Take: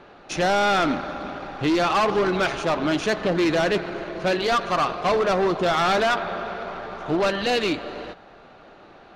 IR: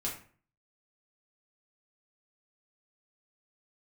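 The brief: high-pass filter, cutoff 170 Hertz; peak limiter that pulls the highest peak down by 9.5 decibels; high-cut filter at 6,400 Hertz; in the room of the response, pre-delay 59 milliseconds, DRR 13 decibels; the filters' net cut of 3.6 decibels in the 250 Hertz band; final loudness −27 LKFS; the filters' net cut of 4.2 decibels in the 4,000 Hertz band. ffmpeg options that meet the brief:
-filter_complex "[0:a]highpass=170,lowpass=6400,equalizer=frequency=250:width_type=o:gain=-4.5,equalizer=frequency=4000:width_type=o:gain=-5,alimiter=limit=-22.5dB:level=0:latency=1,asplit=2[link_01][link_02];[1:a]atrim=start_sample=2205,adelay=59[link_03];[link_02][link_03]afir=irnorm=-1:irlink=0,volume=-15.5dB[link_04];[link_01][link_04]amix=inputs=2:normalize=0,volume=3.5dB"

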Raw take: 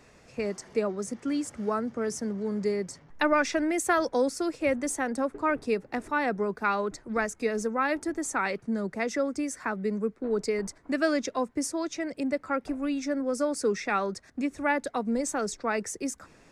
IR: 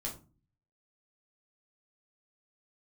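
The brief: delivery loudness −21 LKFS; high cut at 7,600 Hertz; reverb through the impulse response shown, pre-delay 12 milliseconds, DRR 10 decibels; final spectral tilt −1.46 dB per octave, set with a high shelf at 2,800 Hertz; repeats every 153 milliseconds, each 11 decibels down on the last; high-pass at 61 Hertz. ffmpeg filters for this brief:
-filter_complex "[0:a]highpass=61,lowpass=7600,highshelf=frequency=2800:gain=-3.5,aecho=1:1:153|306|459:0.282|0.0789|0.0221,asplit=2[link_01][link_02];[1:a]atrim=start_sample=2205,adelay=12[link_03];[link_02][link_03]afir=irnorm=-1:irlink=0,volume=-10.5dB[link_04];[link_01][link_04]amix=inputs=2:normalize=0,volume=8dB"

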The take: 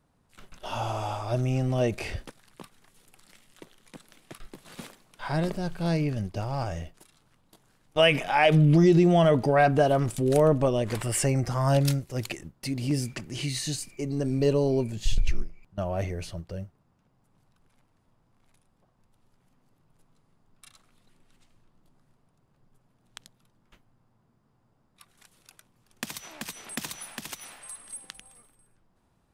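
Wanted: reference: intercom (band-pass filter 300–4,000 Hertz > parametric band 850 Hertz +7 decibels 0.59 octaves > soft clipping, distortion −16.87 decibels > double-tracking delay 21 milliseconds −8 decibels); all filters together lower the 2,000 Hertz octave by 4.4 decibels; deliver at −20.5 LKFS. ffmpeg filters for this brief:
ffmpeg -i in.wav -filter_complex "[0:a]highpass=300,lowpass=4000,equalizer=frequency=850:width_type=o:width=0.59:gain=7,equalizer=frequency=2000:width_type=o:gain=-6,asoftclip=threshold=-14dB,asplit=2[link_01][link_02];[link_02]adelay=21,volume=-8dB[link_03];[link_01][link_03]amix=inputs=2:normalize=0,volume=7dB" out.wav

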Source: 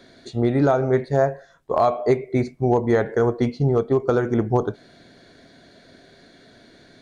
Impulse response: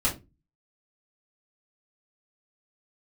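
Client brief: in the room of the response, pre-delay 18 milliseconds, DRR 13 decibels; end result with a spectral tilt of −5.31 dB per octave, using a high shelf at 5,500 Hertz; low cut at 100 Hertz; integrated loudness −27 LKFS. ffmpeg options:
-filter_complex "[0:a]highpass=100,highshelf=frequency=5500:gain=7,asplit=2[link_01][link_02];[1:a]atrim=start_sample=2205,adelay=18[link_03];[link_02][link_03]afir=irnorm=-1:irlink=0,volume=-22.5dB[link_04];[link_01][link_04]amix=inputs=2:normalize=0,volume=-6dB"

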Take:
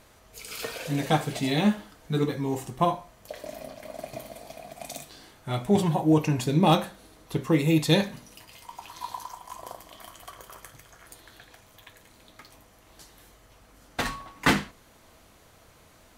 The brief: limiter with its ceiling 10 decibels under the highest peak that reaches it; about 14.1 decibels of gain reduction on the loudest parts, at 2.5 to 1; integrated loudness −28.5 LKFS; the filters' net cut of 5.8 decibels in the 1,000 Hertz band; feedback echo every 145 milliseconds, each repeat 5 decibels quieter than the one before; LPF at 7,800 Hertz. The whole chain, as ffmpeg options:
ffmpeg -i in.wav -af "lowpass=7800,equalizer=frequency=1000:width_type=o:gain=-8,acompressor=threshold=-39dB:ratio=2.5,alimiter=level_in=5.5dB:limit=-24dB:level=0:latency=1,volume=-5.5dB,aecho=1:1:145|290|435|580|725|870|1015:0.562|0.315|0.176|0.0988|0.0553|0.031|0.0173,volume=12.5dB" out.wav

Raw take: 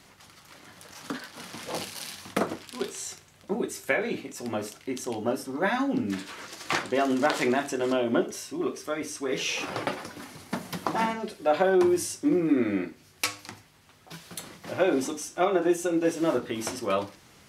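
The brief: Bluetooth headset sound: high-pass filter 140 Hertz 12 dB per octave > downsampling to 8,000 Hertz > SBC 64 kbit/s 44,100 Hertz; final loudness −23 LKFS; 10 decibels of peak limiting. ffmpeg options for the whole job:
ffmpeg -i in.wav -af "alimiter=limit=-18dB:level=0:latency=1,highpass=140,aresample=8000,aresample=44100,volume=8dB" -ar 44100 -c:a sbc -b:a 64k out.sbc

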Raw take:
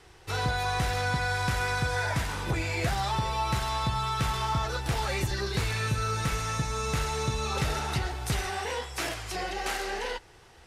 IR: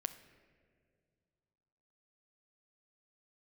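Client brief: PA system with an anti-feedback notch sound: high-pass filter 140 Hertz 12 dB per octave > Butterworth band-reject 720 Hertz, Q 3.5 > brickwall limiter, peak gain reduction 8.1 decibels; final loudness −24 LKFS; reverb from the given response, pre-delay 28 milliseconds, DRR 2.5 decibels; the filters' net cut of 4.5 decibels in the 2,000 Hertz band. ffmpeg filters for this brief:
-filter_complex "[0:a]equalizer=frequency=2000:width_type=o:gain=-6.5,asplit=2[link_01][link_02];[1:a]atrim=start_sample=2205,adelay=28[link_03];[link_02][link_03]afir=irnorm=-1:irlink=0,volume=-1dB[link_04];[link_01][link_04]amix=inputs=2:normalize=0,highpass=140,asuperstop=centerf=720:order=8:qfactor=3.5,volume=10dB,alimiter=limit=-15.5dB:level=0:latency=1"

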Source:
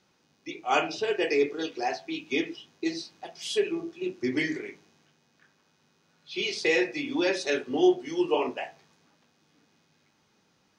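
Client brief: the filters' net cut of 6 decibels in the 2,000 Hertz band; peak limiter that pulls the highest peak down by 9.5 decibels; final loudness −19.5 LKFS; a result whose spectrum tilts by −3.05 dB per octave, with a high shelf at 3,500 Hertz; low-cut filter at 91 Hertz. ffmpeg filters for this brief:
ffmpeg -i in.wav -af "highpass=91,equalizer=frequency=2000:width_type=o:gain=-4.5,highshelf=frequency=3500:gain=-8.5,volume=13.5dB,alimiter=limit=-8dB:level=0:latency=1" out.wav

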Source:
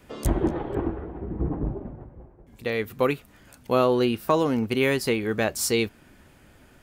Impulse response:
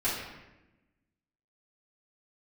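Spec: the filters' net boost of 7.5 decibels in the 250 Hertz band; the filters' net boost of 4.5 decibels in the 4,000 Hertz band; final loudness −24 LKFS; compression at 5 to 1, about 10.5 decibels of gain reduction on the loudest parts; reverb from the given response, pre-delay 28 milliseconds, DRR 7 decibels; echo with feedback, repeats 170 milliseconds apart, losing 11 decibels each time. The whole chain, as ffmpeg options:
-filter_complex "[0:a]equalizer=frequency=250:width_type=o:gain=9,equalizer=frequency=4000:width_type=o:gain=6,acompressor=threshold=-25dB:ratio=5,aecho=1:1:170|340|510:0.282|0.0789|0.0221,asplit=2[link_01][link_02];[1:a]atrim=start_sample=2205,adelay=28[link_03];[link_02][link_03]afir=irnorm=-1:irlink=0,volume=-16dB[link_04];[link_01][link_04]amix=inputs=2:normalize=0,volume=4.5dB"

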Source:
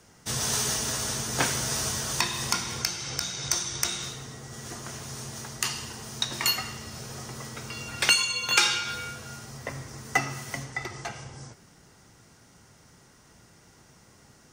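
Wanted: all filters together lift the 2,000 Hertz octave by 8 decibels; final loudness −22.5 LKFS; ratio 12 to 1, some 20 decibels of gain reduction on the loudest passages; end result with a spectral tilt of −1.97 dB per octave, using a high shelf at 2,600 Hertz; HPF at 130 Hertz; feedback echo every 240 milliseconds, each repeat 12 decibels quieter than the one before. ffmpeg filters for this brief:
ffmpeg -i in.wav -af "highpass=130,equalizer=frequency=2000:width_type=o:gain=7.5,highshelf=frequency=2600:gain=5.5,acompressor=threshold=-32dB:ratio=12,aecho=1:1:240|480|720:0.251|0.0628|0.0157,volume=12dB" out.wav

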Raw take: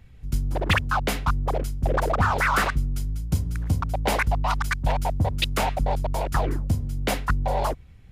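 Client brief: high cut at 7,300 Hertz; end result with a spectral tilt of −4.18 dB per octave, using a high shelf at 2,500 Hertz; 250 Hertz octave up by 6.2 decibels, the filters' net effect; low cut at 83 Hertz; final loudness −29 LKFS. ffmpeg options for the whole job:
ffmpeg -i in.wav -af "highpass=83,lowpass=7300,equalizer=frequency=250:width_type=o:gain=8.5,highshelf=frequency=2500:gain=4.5,volume=-4.5dB" out.wav

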